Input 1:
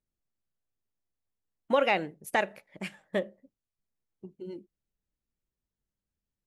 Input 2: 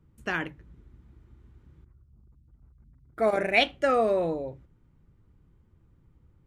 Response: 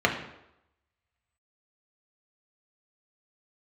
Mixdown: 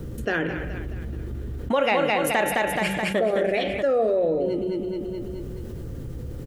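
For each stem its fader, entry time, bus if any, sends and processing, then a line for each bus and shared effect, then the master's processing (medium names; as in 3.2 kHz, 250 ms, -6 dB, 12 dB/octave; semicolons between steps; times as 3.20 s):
+1.0 dB, 0.00 s, no send, echo send -4 dB, de-hum 96.05 Hz, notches 40
-7.5 dB, 0.00 s, send -21 dB, echo send -22 dB, graphic EQ 500/1000/8000 Hz +8/-9/-6 dB; endings held to a fixed fall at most 160 dB/s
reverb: on, RT60 0.85 s, pre-delay 3 ms
echo: feedback delay 213 ms, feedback 42%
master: level flattener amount 70%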